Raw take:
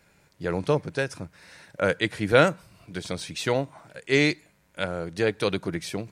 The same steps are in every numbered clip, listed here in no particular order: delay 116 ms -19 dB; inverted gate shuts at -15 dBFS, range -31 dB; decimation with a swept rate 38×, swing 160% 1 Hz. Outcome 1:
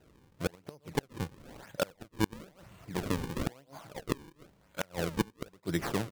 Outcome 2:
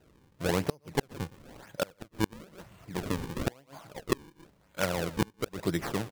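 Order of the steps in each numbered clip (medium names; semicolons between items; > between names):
delay > inverted gate > decimation with a swept rate; decimation with a swept rate > delay > inverted gate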